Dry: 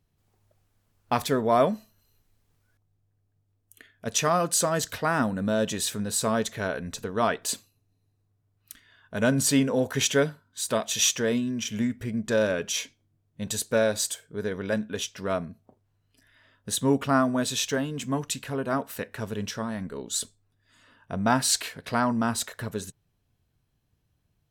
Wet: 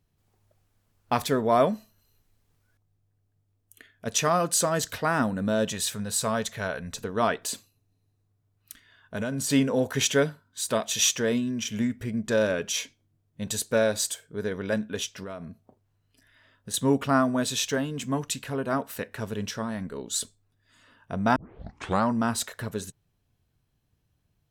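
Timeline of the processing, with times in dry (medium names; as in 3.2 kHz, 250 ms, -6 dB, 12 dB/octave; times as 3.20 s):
5.70–6.94 s: peaking EQ 320 Hz -9.5 dB
7.45–9.50 s: compression, threshold -26 dBFS
15.23–16.74 s: compression, threshold -34 dBFS
21.36 s: tape start 0.73 s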